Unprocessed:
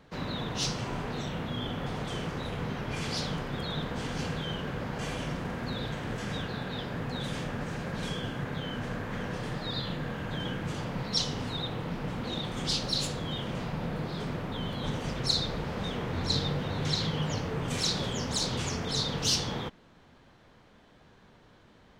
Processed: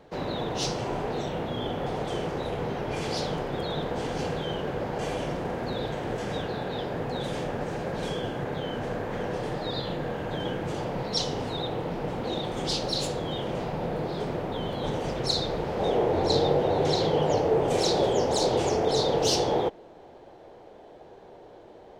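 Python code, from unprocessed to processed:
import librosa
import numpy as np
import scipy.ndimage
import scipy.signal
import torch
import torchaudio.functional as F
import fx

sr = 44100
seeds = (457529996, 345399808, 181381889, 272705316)

y = fx.band_shelf(x, sr, hz=530.0, db=fx.steps((0.0, 8.5), (15.79, 15.0)), octaves=1.7)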